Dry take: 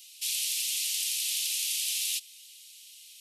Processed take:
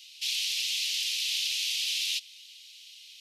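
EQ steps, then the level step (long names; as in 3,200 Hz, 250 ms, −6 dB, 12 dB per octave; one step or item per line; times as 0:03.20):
high-frequency loss of the air 250 metres
high-shelf EQ 2,100 Hz +12 dB
high-shelf EQ 6,100 Hz +8.5 dB
0.0 dB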